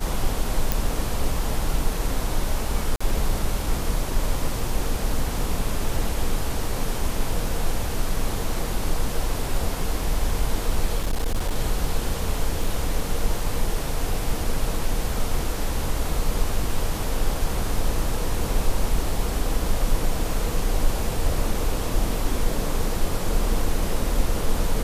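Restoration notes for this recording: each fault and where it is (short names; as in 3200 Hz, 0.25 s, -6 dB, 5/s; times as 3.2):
0.72 pop
2.96–3 gap 45 ms
10.97–11.56 clipped -18.5 dBFS
12.64 gap 2.5 ms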